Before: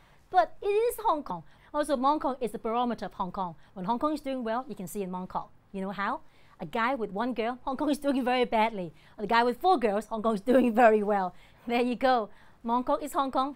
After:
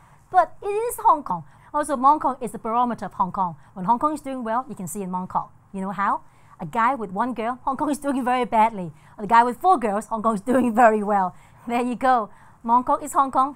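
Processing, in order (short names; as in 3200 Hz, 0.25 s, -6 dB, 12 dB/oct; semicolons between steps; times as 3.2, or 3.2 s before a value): graphic EQ 125/500/1000/4000/8000 Hz +10/-4/+10/-11/+11 dB; gain +2.5 dB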